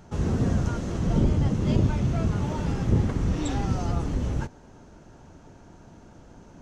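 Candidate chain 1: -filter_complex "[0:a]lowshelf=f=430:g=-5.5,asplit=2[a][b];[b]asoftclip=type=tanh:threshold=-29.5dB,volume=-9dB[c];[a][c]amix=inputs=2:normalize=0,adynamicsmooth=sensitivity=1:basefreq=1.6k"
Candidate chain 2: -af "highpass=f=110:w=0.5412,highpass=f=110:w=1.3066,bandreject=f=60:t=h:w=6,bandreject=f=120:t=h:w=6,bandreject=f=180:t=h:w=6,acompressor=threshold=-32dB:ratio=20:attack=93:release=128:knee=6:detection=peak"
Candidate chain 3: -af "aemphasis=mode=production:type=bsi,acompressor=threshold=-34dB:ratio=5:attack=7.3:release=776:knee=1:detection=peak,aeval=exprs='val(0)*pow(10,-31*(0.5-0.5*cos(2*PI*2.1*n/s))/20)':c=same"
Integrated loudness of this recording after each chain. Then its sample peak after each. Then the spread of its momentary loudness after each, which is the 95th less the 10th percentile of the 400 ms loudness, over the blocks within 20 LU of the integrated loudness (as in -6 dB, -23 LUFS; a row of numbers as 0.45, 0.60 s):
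-29.5, -33.0, -46.5 LUFS; -13.5, -20.5, -28.5 dBFS; 5, 20, 14 LU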